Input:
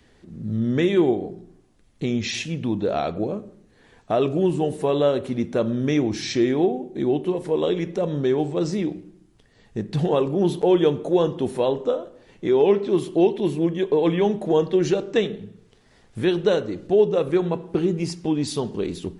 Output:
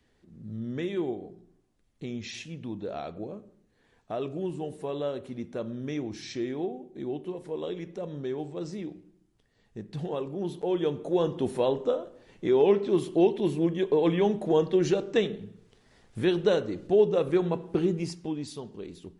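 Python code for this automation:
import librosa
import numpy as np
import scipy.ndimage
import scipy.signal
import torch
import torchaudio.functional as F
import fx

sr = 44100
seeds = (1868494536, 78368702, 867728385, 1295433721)

y = fx.gain(x, sr, db=fx.line((10.54, -12.0), (11.42, -4.0), (17.88, -4.0), (18.61, -14.0)))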